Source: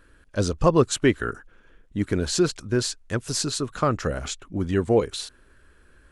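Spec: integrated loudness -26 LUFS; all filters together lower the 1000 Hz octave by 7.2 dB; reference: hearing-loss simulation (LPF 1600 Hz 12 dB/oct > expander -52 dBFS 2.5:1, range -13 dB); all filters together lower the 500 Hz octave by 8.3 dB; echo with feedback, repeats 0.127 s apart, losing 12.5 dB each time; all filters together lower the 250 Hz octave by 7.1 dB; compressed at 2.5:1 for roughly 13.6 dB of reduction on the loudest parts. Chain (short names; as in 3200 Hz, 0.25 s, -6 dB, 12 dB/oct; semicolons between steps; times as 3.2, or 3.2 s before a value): bell 250 Hz -7.5 dB; bell 500 Hz -6.5 dB; bell 1000 Hz -6 dB; compressor 2.5:1, threshold -40 dBFS; LPF 1600 Hz 12 dB/oct; feedback echo 0.127 s, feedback 24%, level -12.5 dB; expander -52 dBFS 2.5:1, range -13 dB; gain +16 dB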